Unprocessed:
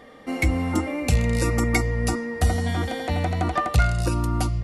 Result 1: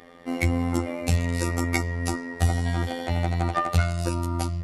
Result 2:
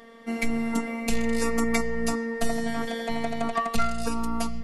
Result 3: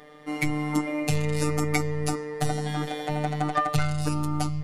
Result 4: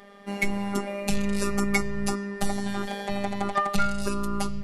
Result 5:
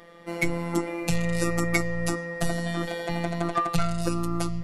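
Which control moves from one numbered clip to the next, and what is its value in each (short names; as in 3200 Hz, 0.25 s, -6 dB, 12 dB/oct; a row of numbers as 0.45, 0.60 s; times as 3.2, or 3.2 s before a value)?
robotiser, frequency: 86, 230, 150, 200, 170 Hz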